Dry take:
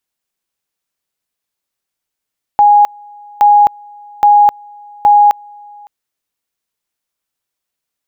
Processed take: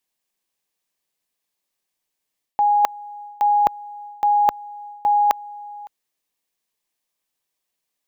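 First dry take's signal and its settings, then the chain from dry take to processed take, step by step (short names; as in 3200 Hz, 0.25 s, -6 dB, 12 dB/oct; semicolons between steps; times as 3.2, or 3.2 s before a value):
two-level tone 826 Hz -3.5 dBFS, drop 29 dB, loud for 0.26 s, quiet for 0.56 s, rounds 4
bell 71 Hz -9 dB 1.4 oct; notch 1400 Hz, Q 5.8; reverse; compressor 12:1, threshold -15 dBFS; reverse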